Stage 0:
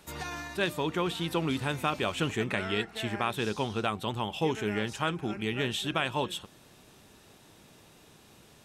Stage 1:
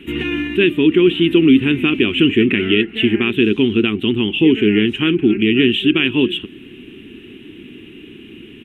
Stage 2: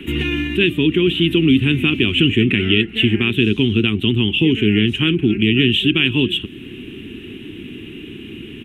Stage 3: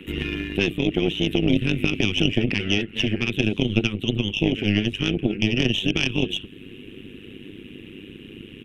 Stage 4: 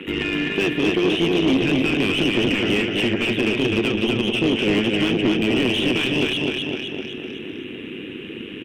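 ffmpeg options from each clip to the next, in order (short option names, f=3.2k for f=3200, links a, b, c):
-filter_complex "[0:a]firequalizer=gain_entry='entry(160,0);entry(250,13);entry(370,12);entry(560,-17);entry(850,-17);entry(1900,1);entry(2900,11);entry(4600,-28);entry(10000,-17)':delay=0.05:min_phase=1,asplit=2[a][b];[b]alimiter=limit=-20.5dB:level=0:latency=1:release=380,volume=3dB[c];[a][c]amix=inputs=2:normalize=0,volume=5.5dB"
-filter_complex "[0:a]equalizer=f=100:t=o:w=1.9:g=3.5,acrossover=split=150|3000[a][b][c];[b]acompressor=threshold=-43dB:ratio=1.5[d];[a][d][c]amix=inputs=3:normalize=0,volume=6dB"
-af "tremolo=f=100:d=0.788,aeval=exprs='0.794*(cos(1*acos(clip(val(0)/0.794,-1,1)))-cos(1*PI/2))+0.282*(cos(2*acos(clip(val(0)/0.794,-1,1)))-cos(2*PI/2))+0.0447*(cos(3*acos(clip(val(0)/0.794,-1,1)))-cos(3*PI/2))':c=same,volume=-2.5dB"
-filter_complex "[0:a]aecho=1:1:254|508|762|1016|1270|1524:0.562|0.287|0.146|0.0746|0.038|0.0194,asplit=2[a][b];[b]highpass=f=720:p=1,volume=27dB,asoftclip=type=tanh:threshold=-1dB[c];[a][c]amix=inputs=2:normalize=0,lowpass=f=1.3k:p=1,volume=-6dB,volume=-6dB"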